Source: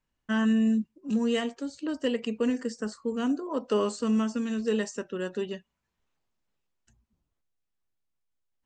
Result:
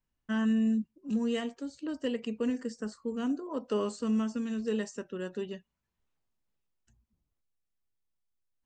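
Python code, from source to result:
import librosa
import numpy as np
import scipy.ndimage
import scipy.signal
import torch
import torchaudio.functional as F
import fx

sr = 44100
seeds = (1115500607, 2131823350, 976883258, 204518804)

y = fx.low_shelf(x, sr, hz=240.0, db=5.0)
y = F.gain(torch.from_numpy(y), -6.0).numpy()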